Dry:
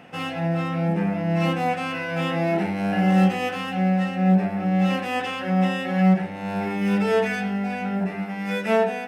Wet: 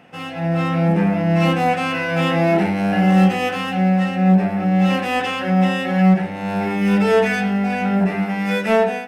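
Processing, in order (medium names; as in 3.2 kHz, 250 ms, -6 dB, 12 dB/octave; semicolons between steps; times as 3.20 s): level rider gain up to 11.5 dB; in parallel at -9.5 dB: saturation -16.5 dBFS, distortion -7 dB; on the sum: trim -4.5 dB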